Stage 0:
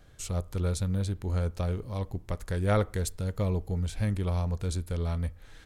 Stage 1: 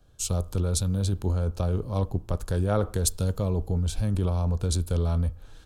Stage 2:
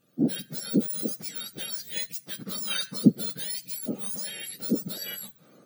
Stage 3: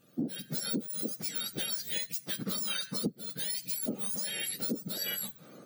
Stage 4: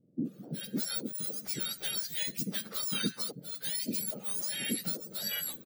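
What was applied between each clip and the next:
in parallel at +3 dB: compressor with a negative ratio -30 dBFS, ratio -0.5; on the sum: peaking EQ 2 kHz -15 dB 0.4 oct; three bands expanded up and down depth 40%; trim -2 dB
spectrum inverted on a logarithmic axis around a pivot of 1.4 kHz
compression 20:1, threshold -34 dBFS, peak gain reduction 24 dB; trim +4 dB
bands offset in time lows, highs 250 ms, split 480 Hz

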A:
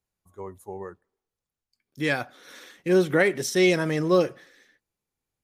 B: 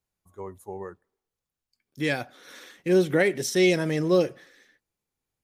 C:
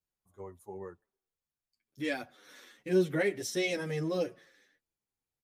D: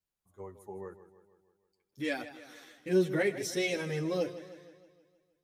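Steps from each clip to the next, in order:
dynamic bell 1.2 kHz, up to -7 dB, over -40 dBFS, Q 1.6
endless flanger 8.4 ms -2.3 Hz; trim -5 dB
modulated delay 157 ms, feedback 55%, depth 87 cents, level -14 dB

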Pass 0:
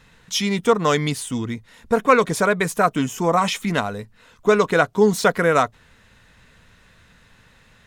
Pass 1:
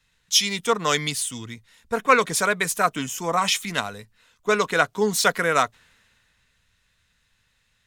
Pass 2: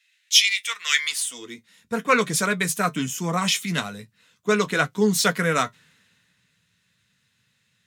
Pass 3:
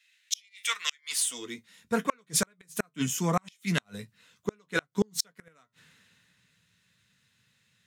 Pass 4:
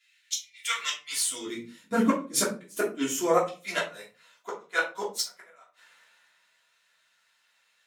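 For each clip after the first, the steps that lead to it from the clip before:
tilt shelf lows -6 dB, about 1.3 kHz; three bands expanded up and down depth 40%; trim -2 dB
peaking EQ 810 Hz -6 dB 1.4 oct; high-pass sweep 2.2 kHz -> 150 Hz, 0.90–1.77 s; flange 0.41 Hz, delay 8.6 ms, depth 3.4 ms, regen -52%; trim +4.5 dB
inverted gate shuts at -11 dBFS, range -39 dB; trim -1 dB
high-pass sweep 79 Hz -> 750 Hz, 0.36–4.04 s; simulated room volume 160 m³, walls furnished, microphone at 3.1 m; trim -5 dB

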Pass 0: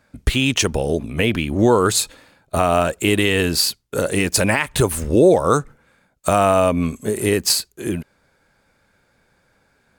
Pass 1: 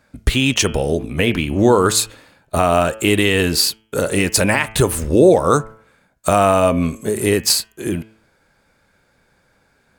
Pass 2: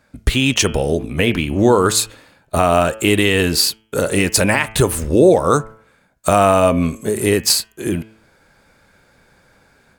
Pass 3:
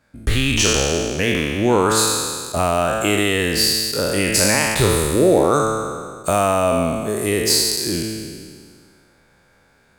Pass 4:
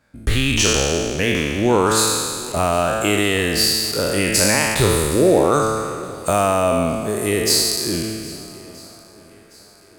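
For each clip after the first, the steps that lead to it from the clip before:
de-hum 109.9 Hz, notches 30; trim +2 dB
level rider gain up to 6 dB
spectral sustain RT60 1.87 s; trim -6 dB
shuffle delay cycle 1274 ms, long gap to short 1.5:1, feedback 33%, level -21 dB

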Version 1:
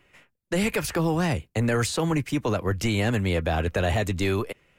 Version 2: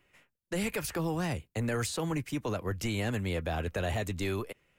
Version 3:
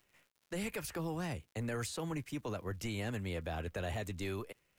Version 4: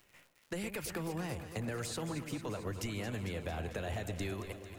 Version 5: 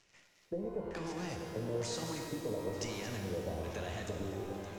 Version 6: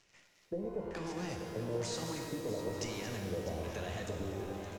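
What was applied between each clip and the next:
treble shelf 9.6 kHz +6.5 dB; trim -8 dB
crackle 120 per s -50 dBFS; bit crusher 12-bit; trim -6.5 dB
compression, threshold -43 dBFS, peak gain reduction 8.5 dB; echo whose repeats swap between lows and highs 112 ms, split 1.2 kHz, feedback 83%, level -9 dB; trim +6.5 dB
LFO low-pass square 1.1 Hz 510–6000 Hz; pitch-shifted reverb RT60 2.5 s, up +12 st, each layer -8 dB, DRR 2.5 dB; trim -4 dB
delay 648 ms -13 dB

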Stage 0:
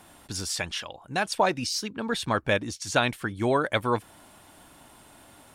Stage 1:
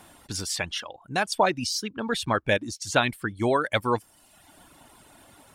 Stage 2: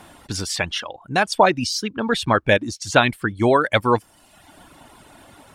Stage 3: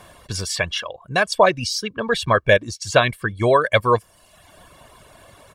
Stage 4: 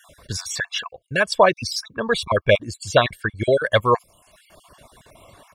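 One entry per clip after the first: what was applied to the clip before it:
reverb removal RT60 0.86 s; trim +1.5 dB
treble shelf 6.5 kHz -8 dB; trim +7 dB
comb 1.8 ms, depth 60%; trim -1 dB
random holes in the spectrogram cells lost 36%

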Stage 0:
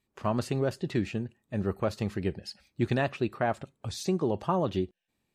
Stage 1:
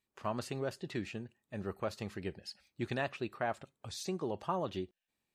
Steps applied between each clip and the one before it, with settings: bass shelf 450 Hz -7.5 dB; trim -4.5 dB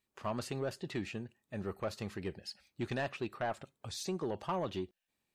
saturation -28.5 dBFS, distortion -15 dB; trim +1.5 dB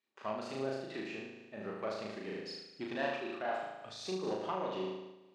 band-pass 270–5000 Hz; on a send: flutter echo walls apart 6.4 m, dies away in 1.1 s; on the sum: random flutter of the level, depth 50%

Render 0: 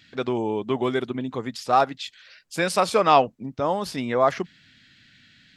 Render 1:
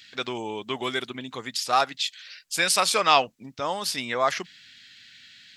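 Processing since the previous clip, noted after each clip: tilt shelf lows -9.5 dB, about 1.3 kHz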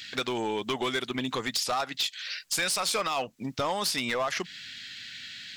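peak limiter -14 dBFS, peak gain reduction 9.5 dB; compression 5:1, threshold -33 dBFS, peak gain reduction 12 dB; overload inside the chain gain 30.5 dB; trim +8 dB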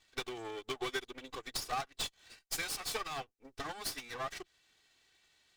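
comb filter that takes the minimum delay 2.6 ms; upward expansion 2.5:1, over -42 dBFS; trim -4.5 dB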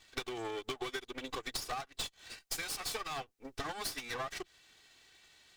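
compression 10:1, threshold -43 dBFS, peak gain reduction 12 dB; trim +7.5 dB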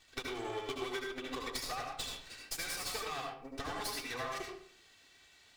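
reverberation RT60 0.55 s, pre-delay 69 ms, DRR 0 dB; trim -2.5 dB

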